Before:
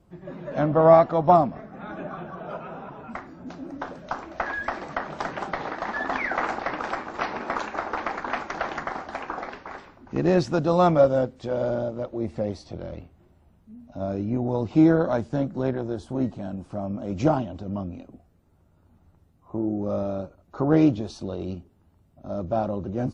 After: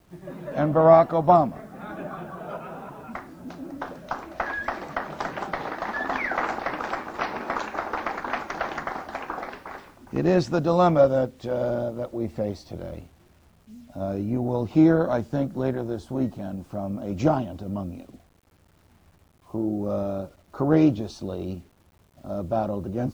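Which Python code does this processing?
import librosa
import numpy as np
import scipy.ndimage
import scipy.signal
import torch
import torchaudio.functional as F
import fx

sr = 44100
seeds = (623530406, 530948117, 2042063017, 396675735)

y = fx.quant_dither(x, sr, seeds[0], bits=10, dither='none')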